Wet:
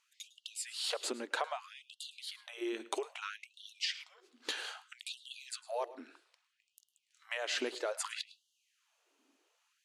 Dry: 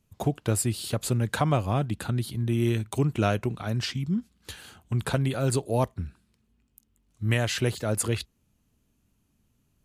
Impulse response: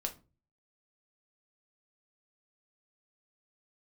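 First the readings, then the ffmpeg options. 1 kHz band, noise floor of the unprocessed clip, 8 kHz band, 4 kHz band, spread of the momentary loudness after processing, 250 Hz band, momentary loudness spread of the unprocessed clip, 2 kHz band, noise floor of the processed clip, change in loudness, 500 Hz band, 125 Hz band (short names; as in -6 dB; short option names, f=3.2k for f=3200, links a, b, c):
-10.0 dB, -71 dBFS, -10.0 dB, -3.0 dB, 13 LU, -19.0 dB, 8 LU, -6.0 dB, -81 dBFS, -12.0 dB, -11.5 dB, under -40 dB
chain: -filter_complex "[0:a]lowpass=6.1k,lowshelf=f=220:g=-6.5,acompressor=threshold=-36dB:ratio=12,asplit=2[a][b];[1:a]atrim=start_sample=2205,adelay=105[c];[b][c]afir=irnorm=-1:irlink=0,volume=-18dB[d];[a][d]amix=inputs=2:normalize=0,afftfilt=real='re*gte(b*sr/1024,240*pow(2800/240,0.5+0.5*sin(2*PI*0.62*pts/sr)))':imag='im*gte(b*sr/1024,240*pow(2800/240,0.5+0.5*sin(2*PI*0.62*pts/sr)))':win_size=1024:overlap=0.75,volume=6dB"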